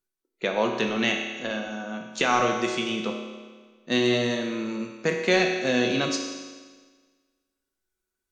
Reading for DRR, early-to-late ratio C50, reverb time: 1.0 dB, 4.0 dB, 1.5 s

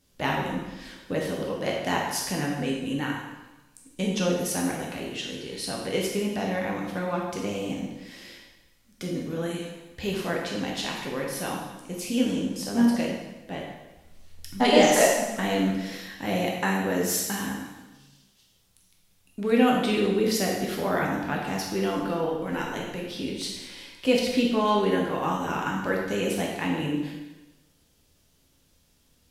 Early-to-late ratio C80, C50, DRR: 4.5 dB, 2.0 dB, -2.0 dB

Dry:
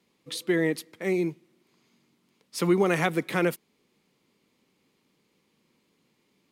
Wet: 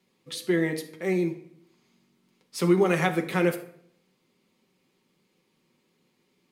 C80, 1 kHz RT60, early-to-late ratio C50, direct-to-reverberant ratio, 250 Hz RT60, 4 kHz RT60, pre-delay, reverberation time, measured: 14.5 dB, 0.60 s, 11.0 dB, 3.5 dB, 0.75 s, 0.45 s, 5 ms, 0.65 s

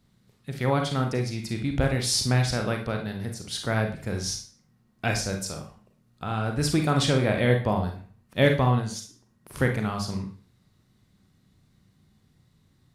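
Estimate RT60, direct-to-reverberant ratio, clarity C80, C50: 0.40 s, 3.5 dB, 13.5 dB, 7.5 dB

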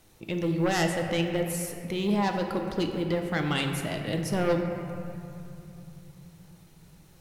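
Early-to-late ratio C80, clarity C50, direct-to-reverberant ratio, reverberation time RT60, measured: 5.5 dB, 4.5 dB, 3.0 dB, 2.7 s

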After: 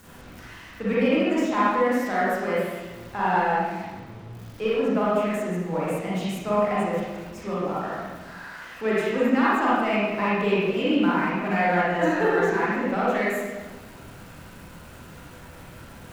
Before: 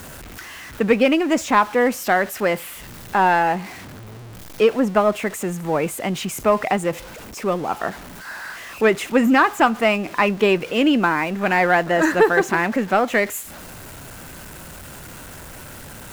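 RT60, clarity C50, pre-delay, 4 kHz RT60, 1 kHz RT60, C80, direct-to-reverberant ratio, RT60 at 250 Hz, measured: 1.3 s, -4.5 dB, 30 ms, 0.95 s, 1.2 s, -0.5 dB, -8.5 dB, 1.5 s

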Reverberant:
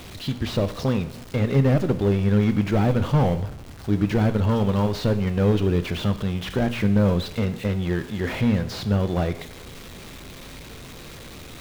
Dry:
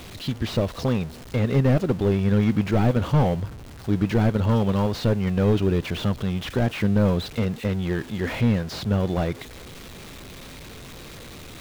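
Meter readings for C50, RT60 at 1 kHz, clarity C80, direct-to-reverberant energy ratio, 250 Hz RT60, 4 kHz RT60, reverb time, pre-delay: 14.0 dB, 0.65 s, 17.0 dB, 11.0 dB, 0.65 s, 0.65 s, 0.65 s, 16 ms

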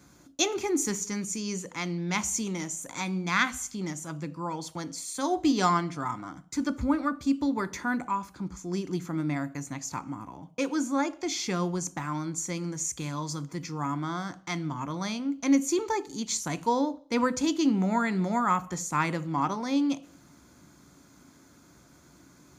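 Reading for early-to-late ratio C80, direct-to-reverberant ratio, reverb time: 23.0 dB, 11.5 dB, 0.50 s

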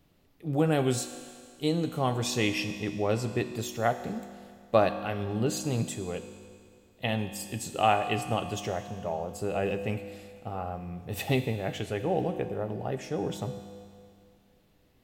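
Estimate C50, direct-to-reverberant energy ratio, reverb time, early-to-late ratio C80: 9.5 dB, 8.0 dB, 2.2 s, 10.5 dB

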